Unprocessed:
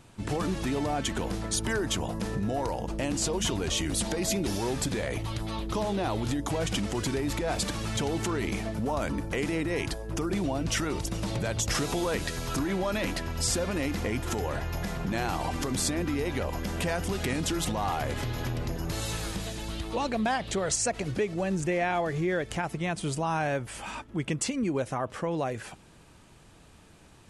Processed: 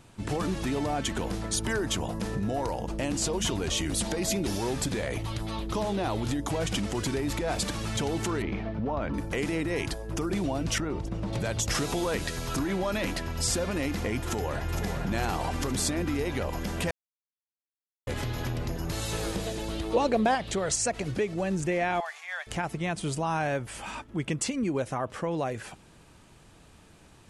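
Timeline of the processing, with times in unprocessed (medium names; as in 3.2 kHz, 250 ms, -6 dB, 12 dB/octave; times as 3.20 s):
8.42–9.14 s: distance through air 310 m
10.78–11.33 s: low-pass 1 kHz 6 dB/octave
14.18–14.84 s: echo throw 460 ms, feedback 65%, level -7 dB
16.91–18.07 s: mute
19.12–20.35 s: peaking EQ 460 Hz +8.5 dB 1.3 oct
22.00–22.47 s: steep high-pass 720 Hz 48 dB/octave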